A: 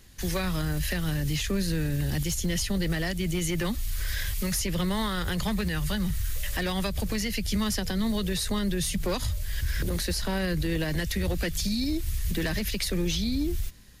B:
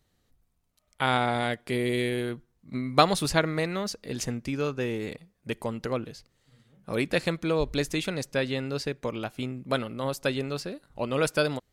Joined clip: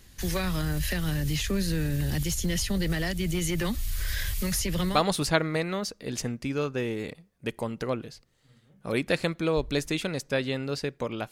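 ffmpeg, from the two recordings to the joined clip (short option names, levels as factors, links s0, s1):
-filter_complex "[0:a]apad=whole_dur=11.31,atrim=end=11.31,atrim=end=5.05,asetpts=PTS-STARTPTS[s0];[1:a]atrim=start=2.9:end=9.34,asetpts=PTS-STARTPTS[s1];[s0][s1]acrossfade=d=0.18:c1=tri:c2=tri"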